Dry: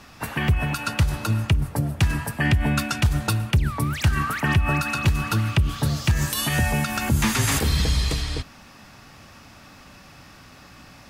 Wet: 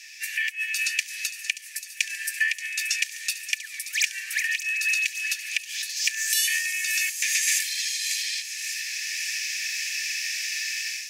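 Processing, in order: AGC gain up to 16 dB; in parallel at +2 dB: limiter -15 dBFS, peak gain reduction 14 dB; on the sum: compressor 3:1, threshold -20 dBFS, peak gain reduction 13 dB; rippled Chebyshev high-pass 1700 Hz, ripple 9 dB; on a send: thin delay 0.579 s, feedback 65%, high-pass 4000 Hz, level -10 dB; on the sum: gain +4 dB

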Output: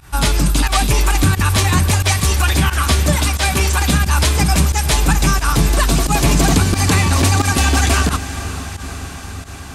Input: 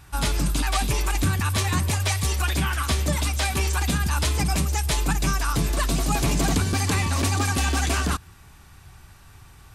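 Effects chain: diffused feedback echo 0.472 s, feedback 71%, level -13.5 dB; pump 89 bpm, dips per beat 1, -16 dB, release 75 ms; gain +8.5 dB

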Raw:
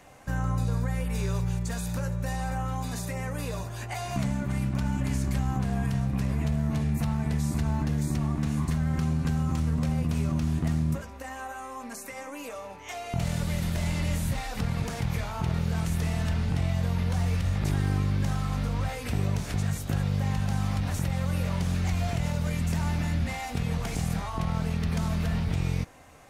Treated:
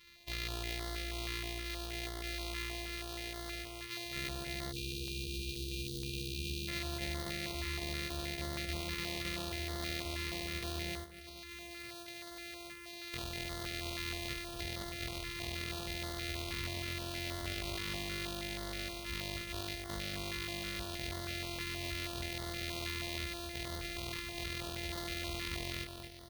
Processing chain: sample sorter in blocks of 128 samples; notch 1600 Hz, Q 5.6; soft clip -19.5 dBFS, distortion -20 dB; passive tone stack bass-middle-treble 5-5-5; doubler 15 ms -8 dB; feedback echo 0.235 s, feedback 51%, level -7 dB; 4.72–6.68 spectral delete 510–2400 Hz; 11.04–13.13 negative-ratio compressor -51 dBFS, ratio -1; ten-band EQ 125 Hz -4 dB, 250 Hz -7 dB, 500 Hz +7 dB, 2000 Hz +6 dB, 4000 Hz +9 dB, 8000 Hz -9 dB; stepped notch 6.3 Hz 680–2500 Hz; gain +2 dB

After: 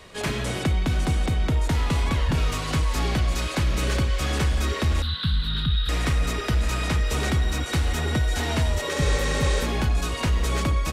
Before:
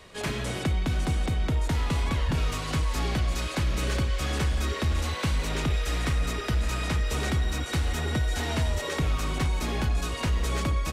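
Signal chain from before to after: 5.02–5.89 EQ curve 200 Hz 0 dB, 310 Hz -15 dB, 670 Hz -24 dB, 1500 Hz -1 dB, 2300 Hz -16 dB, 3800 Hz +10 dB, 6200 Hz -29 dB, 11000 Hz -12 dB; 8.98–9.63 spectral repair 300–9600 Hz before; gain +3.5 dB

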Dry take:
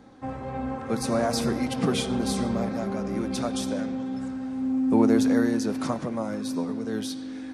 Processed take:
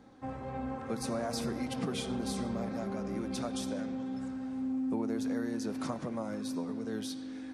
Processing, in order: compressor 4:1, threshold -25 dBFS, peak gain reduction 9 dB; gain -6 dB

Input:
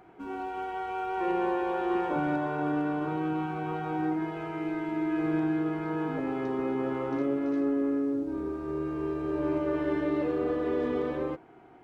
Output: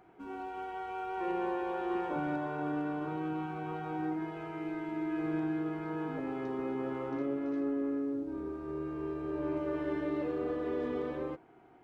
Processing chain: 7.1–9.57 tone controls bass 0 dB, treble -3 dB; gain -5.5 dB

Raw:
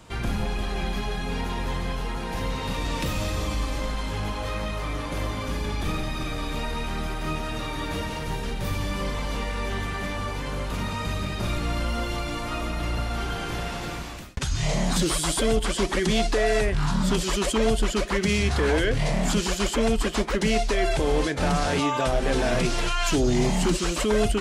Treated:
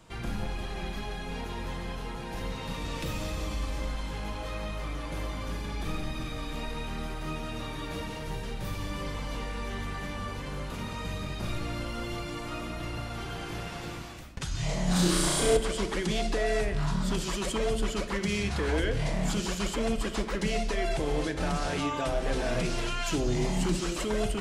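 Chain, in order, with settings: 14.84–15.57 flutter echo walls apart 5.8 m, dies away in 1.3 s; reverb RT60 1.4 s, pre-delay 6 ms, DRR 8.5 dB; gain -7 dB

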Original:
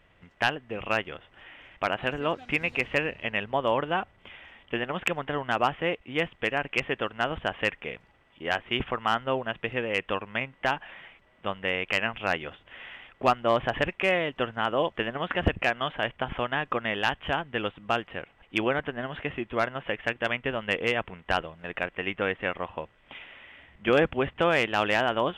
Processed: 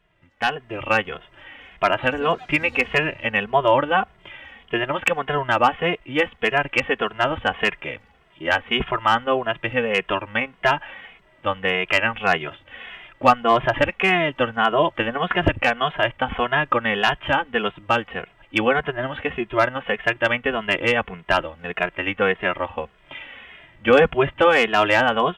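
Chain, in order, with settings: AGC gain up to 12 dB; dynamic EQ 1100 Hz, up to +3 dB, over -27 dBFS, Q 0.73; endless flanger 2.4 ms -1.7 Hz; gain -1 dB

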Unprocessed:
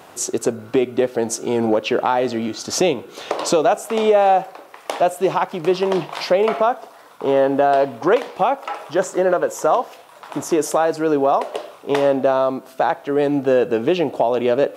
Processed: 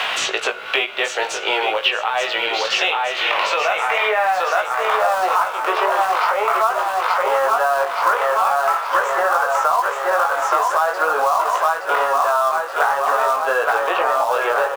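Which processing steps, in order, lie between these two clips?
HPF 480 Hz 24 dB/oct; dynamic EQ 1100 Hz, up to +5 dB, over -32 dBFS, Q 1.3; harmonic-percussive split harmonic +6 dB; high shelf 2500 Hz +5.5 dB; on a send: feedback echo 0.872 s, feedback 55%, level -6 dB; on the sum: limiter -8 dBFS, peak gain reduction 10.5 dB; band-pass sweep 3100 Hz -> 1300 Hz, 2.96–5.03; in parallel at -8 dB: companded quantiser 4-bit; on the sum: chorus 0.43 Hz, delay 17.5 ms, depth 3.1 ms; three-band squash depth 100%; gain +7.5 dB

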